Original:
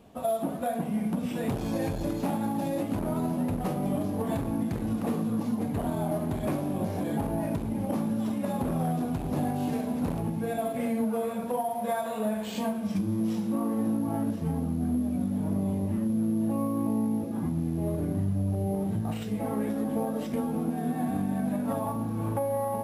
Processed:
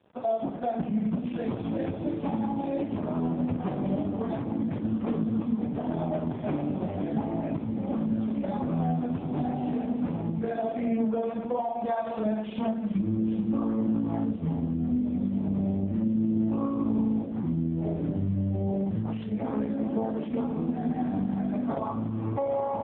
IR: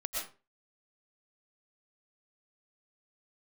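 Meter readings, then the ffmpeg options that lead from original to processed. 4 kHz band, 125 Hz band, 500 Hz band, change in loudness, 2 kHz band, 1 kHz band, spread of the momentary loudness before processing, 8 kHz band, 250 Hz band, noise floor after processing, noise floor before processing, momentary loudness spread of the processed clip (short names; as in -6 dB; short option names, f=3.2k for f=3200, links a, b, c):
n/a, 0.0 dB, 0.0 dB, +0.5 dB, -3.5 dB, -0.5 dB, 3 LU, under -35 dB, +1.0 dB, -35 dBFS, -34 dBFS, 4 LU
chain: -af "aresample=16000,aeval=exprs='sgn(val(0))*max(abs(val(0))-0.00188,0)':c=same,aresample=44100,volume=2dB" -ar 8000 -c:a libopencore_amrnb -b:a 4750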